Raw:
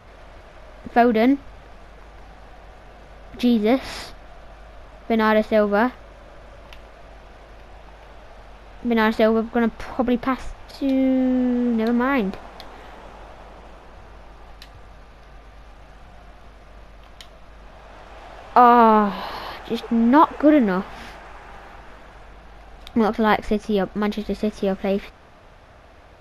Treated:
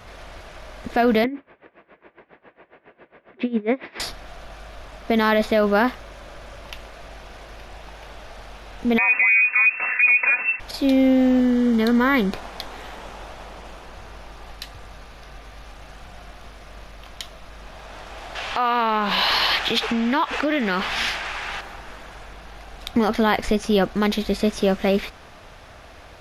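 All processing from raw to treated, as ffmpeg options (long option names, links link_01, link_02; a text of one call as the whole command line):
ffmpeg -i in.wav -filter_complex "[0:a]asettb=1/sr,asplit=3[link_01][link_02][link_03];[link_01]atrim=end=1.244[link_04];[link_02]atrim=start=1.24:end=4,asetpts=PTS-STARTPTS,afade=type=in:duration=0.004:curve=qsin,afade=type=out:start_time=2.756:duration=0.004:curve=qsin,highpass=230,equalizer=frequency=350:width_type=q:width=4:gain=6,equalizer=frequency=760:width_type=q:width=4:gain=-8,equalizer=frequency=1300:width_type=q:width=4:gain=-6,lowpass=frequency=2300:width=0.5412,lowpass=frequency=2300:width=1.3066,aeval=exprs='val(0)*pow(10,-20*(0.5-0.5*cos(2*PI*7.3*n/s))/20)':channel_layout=same[link_05];[link_03]atrim=start=3.996[link_06];[link_04][link_05]acrossfade=duration=0.004:curve1=hsin:curve2=qsin[link_07];[link_07][link_06]acrossfade=duration=0.004:curve1=qsin:curve2=hsin,asettb=1/sr,asplit=3[link_08][link_09][link_10];[link_08]atrim=end=8.984[link_11];[link_09]atrim=start=8.98:end=10.6,asetpts=PTS-STARTPTS,afade=type=in:duration=0.004:curve=qsin,afade=type=out:start_time=1.616:duration=0.004:curve=qsin,lowpass=frequency=2300:width_type=q:width=0.5098,lowpass=frequency=2300:width_type=q:width=0.6013,lowpass=frequency=2300:width_type=q:width=0.9,lowpass=frequency=2300:width_type=q:width=2.563,afreqshift=-2700,aecho=1:1:4:0.98,atrim=end_sample=71442[link_12];[link_10]atrim=start=10.596[link_13];[link_11][link_12]acrossfade=duration=0.004:curve1=hsin:curve2=qsin[link_14];[link_14][link_13]acrossfade=duration=0.004:curve1=qsin:curve2=hsin,asettb=1/sr,asplit=3[link_15][link_16][link_17];[link_15]atrim=end=11.404[link_18];[link_16]atrim=start=11.4:end=12.33,asetpts=PTS-STARTPTS,afade=type=in:duration=0.004:curve=qsin,afade=type=out:start_time=0.926:duration=0.004:curve=qsin,asuperstop=centerf=2600:order=8:qfactor=6.7,equalizer=frequency=700:width_type=o:width=0.78:gain=-5.5[link_19];[link_17]atrim=start=12.326[link_20];[link_18][link_19]acrossfade=duration=0.004:curve1=hsin:curve2=qsin[link_21];[link_21][link_20]acrossfade=duration=0.004:curve1=qsin:curve2=hsin,asettb=1/sr,asplit=3[link_22][link_23][link_24];[link_22]atrim=end=18.354[link_25];[link_23]atrim=start=18.35:end=21.61,asetpts=PTS-STARTPTS,afade=type=in:duration=0.004:curve=qsin,afade=type=out:start_time=3.256:duration=0.004:curve=qsin,equalizer=frequency=2900:width=0.45:gain=12.5,acompressor=threshold=-21dB:ratio=8:attack=3.2:release=140:knee=1:detection=peak[link_26];[link_24]atrim=start=21.606[link_27];[link_25][link_26]acrossfade=duration=0.004:curve1=hsin:curve2=qsin[link_28];[link_28][link_27]acrossfade=duration=0.004:curve1=qsin:curve2=hsin,highshelf=frequency=2300:gain=8.5,alimiter=limit=-11.5dB:level=0:latency=1:release=39,volume=2.5dB" out.wav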